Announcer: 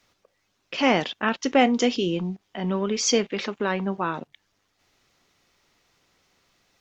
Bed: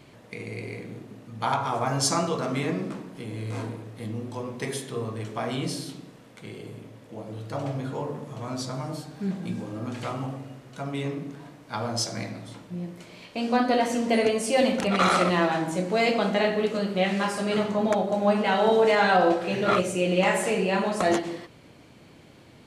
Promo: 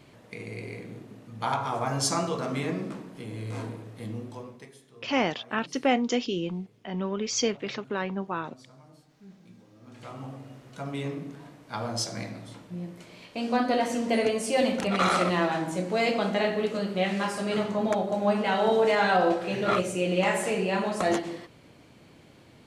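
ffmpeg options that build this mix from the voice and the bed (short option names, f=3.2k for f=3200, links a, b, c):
-filter_complex "[0:a]adelay=4300,volume=-5dB[a];[1:a]volume=16dB,afade=t=out:st=4.14:d=0.56:silence=0.11885,afade=t=in:st=9.81:d=0.85:silence=0.11885[b];[a][b]amix=inputs=2:normalize=0"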